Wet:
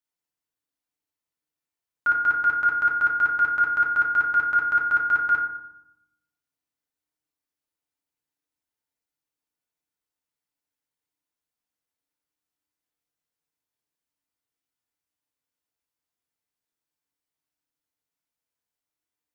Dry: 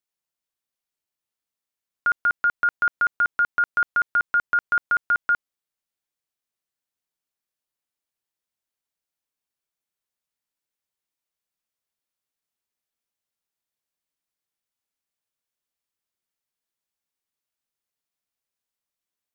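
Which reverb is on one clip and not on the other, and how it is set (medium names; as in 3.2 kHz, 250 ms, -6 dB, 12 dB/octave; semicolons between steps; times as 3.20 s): FDN reverb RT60 0.83 s, low-frequency decay 1.4×, high-frequency decay 0.4×, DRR -2.5 dB; trim -5 dB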